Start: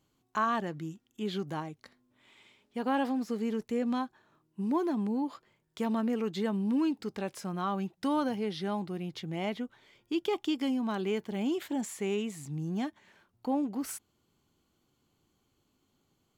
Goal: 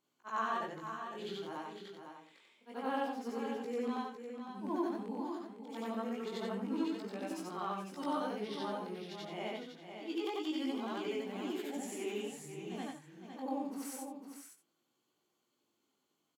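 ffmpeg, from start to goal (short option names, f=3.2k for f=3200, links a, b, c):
-af "afftfilt=real='re':imag='-im':win_size=8192:overlap=0.75,highpass=290,flanger=delay=16.5:depth=6.4:speed=0.26,aecho=1:1:505:0.398,volume=2.5dB"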